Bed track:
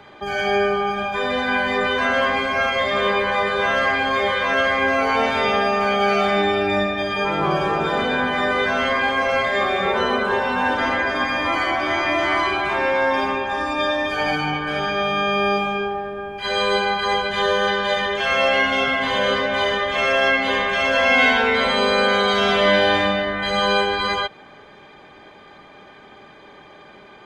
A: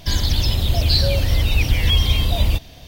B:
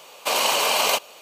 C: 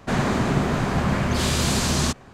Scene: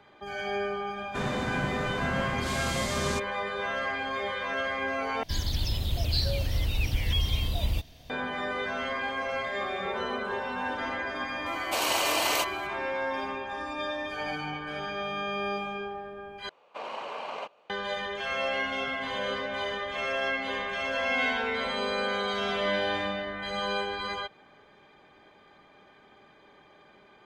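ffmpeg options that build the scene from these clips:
-filter_complex "[2:a]asplit=2[a][b];[0:a]volume=-12dB[c];[b]lowpass=1.8k[d];[c]asplit=3[e][f][g];[e]atrim=end=5.234[h];[1:a]atrim=end=2.87,asetpts=PTS-STARTPTS,volume=-10.5dB[i];[f]atrim=start=8.096:end=16.494[j];[d]atrim=end=1.21,asetpts=PTS-STARTPTS,volume=-13dB[k];[g]atrim=start=17.696[l];[3:a]atrim=end=2.33,asetpts=PTS-STARTPTS,volume=-10.5dB,afade=t=in:d=0.004:c=hsin,afade=t=out:st=2.326:d=0.004:c=hsin,adelay=1070[m];[a]atrim=end=1.21,asetpts=PTS-STARTPTS,volume=-7dB,afade=t=in:d=0.004:c=hsin,afade=t=out:st=1.206:d=0.004:c=hsin,adelay=505386S[n];[h][i]acrossfade=d=0.004:c1=hsin:c2=hsin[o];[o][j]acrossfade=d=0.004:c1=hsin:c2=hsin[p];[p][k]acrossfade=d=0.004:c1=hsin:c2=hsin[q];[q][l]acrossfade=d=0.004:c1=hsin:c2=hsin[r];[r][m][n]amix=inputs=3:normalize=0"

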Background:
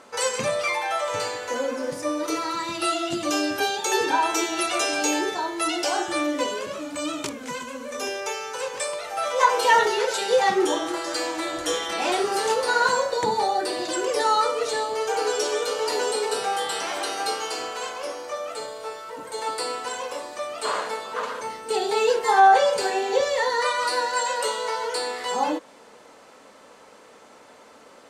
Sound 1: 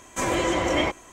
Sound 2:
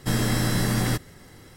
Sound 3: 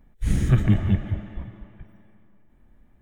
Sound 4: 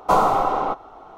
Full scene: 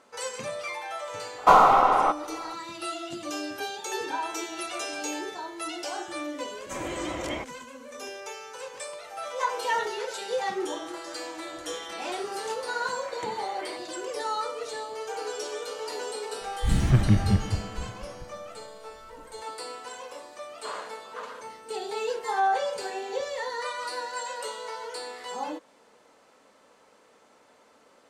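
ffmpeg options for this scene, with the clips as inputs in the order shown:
-filter_complex "[1:a]asplit=2[a][b];[0:a]volume=-9.5dB[c];[4:a]equalizer=f=2k:t=o:w=2.8:g=11.5[d];[b]highpass=790,lowpass=3k[e];[d]atrim=end=1.17,asetpts=PTS-STARTPTS,volume=-5.5dB,afade=t=in:d=0.004:c=hsin,afade=t=out:st=1.166:d=0.004:c=hsin,adelay=1380[f];[a]atrim=end=1.12,asetpts=PTS-STARTPTS,volume=-10dB,afade=t=in:d=0.004:c=hsin,afade=t=out:st=1.116:d=0.004:c=hsin,adelay=6530[g];[e]atrim=end=1.12,asetpts=PTS-STARTPTS,volume=-13.5dB,afade=t=in:d=0.004:c=hsin,afade=t=out:st=1.116:d=0.004:c=hsin,adelay=12860[h];[3:a]atrim=end=3.01,asetpts=PTS-STARTPTS,volume=-1.5dB,afade=t=in:d=0.004:c=hsin,afade=t=out:st=3.006:d=0.004:c=hsin,adelay=16410[i];[c][f][g][h][i]amix=inputs=5:normalize=0"

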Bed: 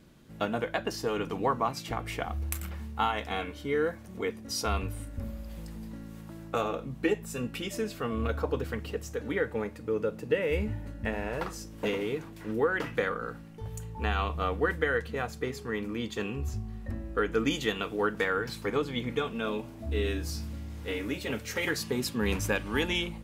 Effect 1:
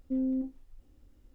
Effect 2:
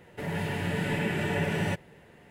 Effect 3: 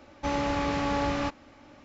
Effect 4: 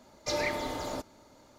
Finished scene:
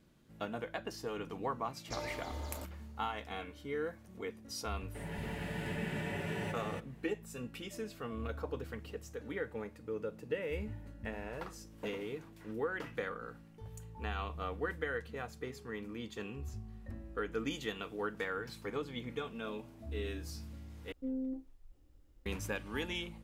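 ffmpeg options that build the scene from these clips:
-filter_complex "[0:a]volume=-9.5dB[a];[2:a]aecho=1:1:279:0.668[b];[1:a]bandreject=f=240:w=5.4[c];[a]asplit=2[d][e];[d]atrim=end=20.924[f];[c]atrim=end=1.34,asetpts=PTS-STARTPTS,volume=-4.5dB[g];[e]atrim=start=22.256[h];[4:a]atrim=end=1.58,asetpts=PTS-STARTPTS,volume=-11dB,afade=t=in:d=0.004:c=hsin,afade=t=out:st=1.576:d=0.004:c=hsin,adelay=1640[i];[b]atrim=end=2.3,asetpts=PTS-STARTPTS,volume=-11dB,afade=t=in:d=0.004:c=hsin,afade=t=out:st=2.296:d=0.004:c=hsin,adelay=210357S[j];[f][g]acrossfade=d=0.004:c1=hsin:c2=hsin[k];[k][h]acrossfade=d=0.004:c1=hsin:c2=hsin[l];[l][i][j]amix=inputs=3:normalize=0"

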